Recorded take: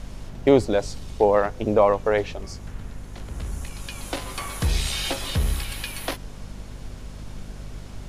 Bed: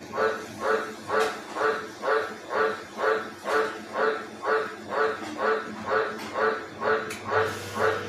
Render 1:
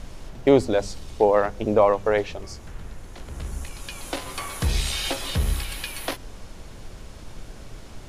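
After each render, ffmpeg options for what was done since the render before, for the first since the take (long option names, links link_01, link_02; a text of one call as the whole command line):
ffmpeg -i in.wav -af "bandreject=frequency=50:width_type=h:width=4,bandreject=frequency=100:width_type=h:width=4,bandreject=frequency=150:width_type=h:width=4,bandreject=frequency=200:width_type=h:width=4,bandreject=frequency=250:width_type=h:width=4" out.wav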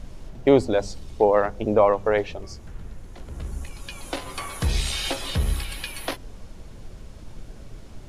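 ffmpeg -i in.wav -af "afftdn=noise_reduction=6:noise_floor=-42" out.wav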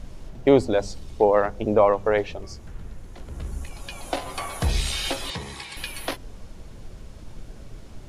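ffmpeg -i in.wav -filter_complex "[0:a]asettb=1/sr,asplit=3[link_01][link_02][link_03];[link_01]atrim=end=3.714[link_04];[link_02]atrim=start=3.71:end=4.71,asetpts=PTS-STARTPTS,afade=type=in:duration=0.004:curve=qsin,afade=type=out:start_time=0.996:duration=0.004:curve=qsin,equalizer=frequency=710:width_type=o:width=0.57:gain=8[link_05];[link_03]atrim=start=4.706[link_06];[link_04][link_05]acrossfade=duration=0.004:curve1=hsin:curve2=qsin[link_07];[link_07][link_06]acrossfade=duration=0.004:curve1=qsin:curve2=hsin,asettb=1/sr,asplit=3[link_08][link_09][link_10];[link_08]atrim=end=5.304[link_11];[link_09]atrim=start=5.3:end=5.77,asetpts=PTS-STARTPTS,afade=type=in:duration=0.004:curve=qsin,afade=type=out:start_time=0.466:duration=0.004:curve=qsin,highpass=190,equalizer=frequency=250:width_type=q:width=4:gain=-9,equalizer=frequency=590:width_type=q:width=4:gain=-8,equalizer=frequency=940:width_type=q:width=4:gain=7,equalizer=frequency=1400:width_type=q:width=4:gain=-8,equalizer=frequency=2000:width_type=q:width=4:gain=4,equalizer=frequency=2900:width_type=q:width=4:gain=-5,lowpass=frequency=8400:width=0.5412,lowpass=frequency=8400:width=1.3066[link_12];[link_10]atrim=start=5.766[link_13];[link_11][link_12]acrossfade=duration=0.004:curve1=hsin:curve2=qsin[link_14];[link_14][link_13]acrossfade=duration=0.004:curve1=qsin:curve2=hsin" out.wav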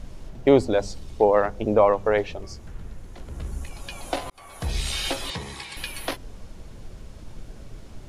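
ffmpeg -i in.wav -filter_complex "[0:a]asplit=2[link_01][link_02];[link_01]atrim=end=4.3,asetpts=PTS-STARTPTS,afade=type=out:start_time=4.296:duration=0.004:curve=hsin[link_03];[link_02]atrim=start=4.3,asetpts=PTS-STARTPTS,afade=type=in:duration=0.67[link_04];[link_03][link_04]concat=n=2:v=0:a=1" out.wav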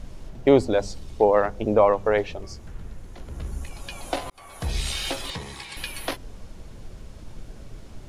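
ffmpeg -i in.wav -filter_complex "[0:a]asettb=1/sr,asplit=3[link_01][link_02][link_03];[link_01]atrim=end=3.154[link_04];[link_02]atrim=start=3.15:end=3.63,asetpts=PTS-STARTPTS,afade=type=in:duration=0.004:curve=qsin,afade=type=out:start_time=0.476:duration=0.004:curve=qsin,bandreject=frequency=8000:width=12[link_05];[link_03]atrim=start=3.626[link_06];[link_04][link_05]acrossfade=duration=0.004:curve1=hsin:curve2=qsin[link_07];[link_07][link_06]acrossfade=duration=0.004:curve1=qsin:curve2=hsin,asettb=1/sr,asplit=3[link_08][link_09][link_10];[link_08]atrim=end=4.934[link_11];[link_09]atrim=start=4.93:end=5.69,asetpts=PTS-STARTPTS,afade=type=in:duration=0.004:curve=qsin,afade=type=out:start_time=0.756:duration=0.004:curve=qsin,aeval=exprs='if(lt(val(0),0),0.708*val(0),val(0))':channel_layout=same[link_12];[link_10]atrim=start=5.686[link_13];[link_11][link_12]acrossfade=duration=0.004:curve1=hsin:curve2=qsin[link_14];[link_14][link_13]acrossfade=duration=0.004:curve1=qsin:curve2=hsin" out.wav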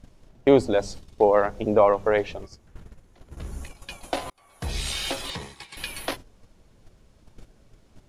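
ffmpeg -i in.wav -af "lowshelf=frequency=98:gain=-5,agate=range=-12dB:threshold=-37dB:ratio=16:detection=peak" out.wav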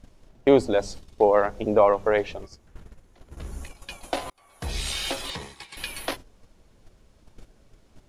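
ffmpeg -i in.wav -af "equalizer=frequency=130:width_type=o:width=1.4:gain=-3" out.wav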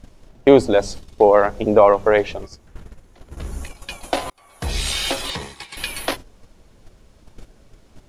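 ffmpeg -i in.wav -af "volume=6.5dB,alimiter=limit=-1dB:level=0:latency=1" out.wav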